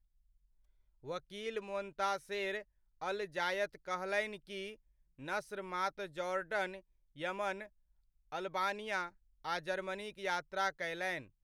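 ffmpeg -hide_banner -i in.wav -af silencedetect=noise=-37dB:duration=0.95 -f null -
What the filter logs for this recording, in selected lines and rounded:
silence_start: 0.00
silence_end: 1.09 | silence_duration: 1.09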